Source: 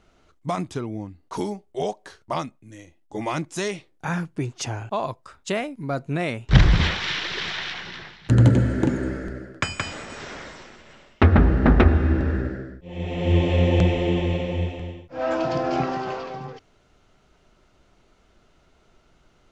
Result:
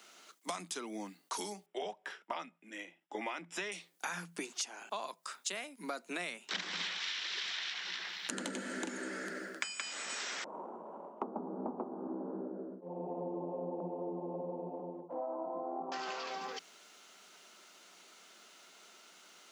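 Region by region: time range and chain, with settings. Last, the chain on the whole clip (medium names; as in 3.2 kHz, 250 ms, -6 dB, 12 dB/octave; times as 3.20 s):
1.66–3.72 s: Savitzky-Golay filter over 25 samples + band-stop 1.1 kHz, Q 13
10.44–15.92 s: elliptic low-pass 980 Hz, stop band 50 dB + upward compressor, threshold -32 dBFS
whole clip: Chebyshev high-pass 170 Hz, order 10; tilt EQ +4.5 dB/octave; compression 8:1, threshold -39 dBFS; trim +2 dB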